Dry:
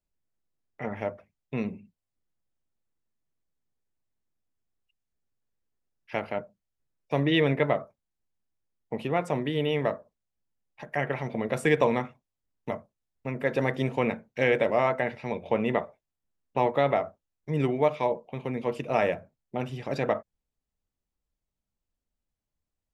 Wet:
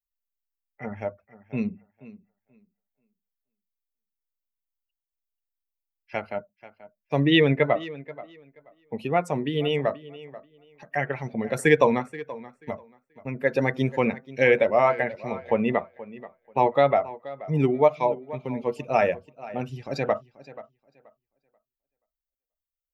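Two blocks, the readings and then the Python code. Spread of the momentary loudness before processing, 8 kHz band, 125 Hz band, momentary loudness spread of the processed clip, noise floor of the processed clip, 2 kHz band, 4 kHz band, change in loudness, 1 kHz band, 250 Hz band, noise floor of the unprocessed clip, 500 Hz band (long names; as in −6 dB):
14 LU, can't be measured, +2.5 dB, 19 LU, below −85 dBFS, +3.5 dB, +4.5 dB, +3.5 dB, +4.0 dB, +3.5 dB, below −85 dBFS, +3.5 dB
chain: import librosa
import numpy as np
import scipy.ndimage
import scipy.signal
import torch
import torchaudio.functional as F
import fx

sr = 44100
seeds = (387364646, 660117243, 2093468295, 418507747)

y = fx.bin_expand(x, sr, power=1.5)
y = fx.low_shelf(y, sr, hz=150.0, db=-3.5)
y = fx.echo_tape(y, sr, ms=482, feedback_pct=21, wet_db=-16.5, lp_hz=4900.0, drive_db=13.0, wow_cents=34)
y = y * librosa.db_to_amplitude(7.0)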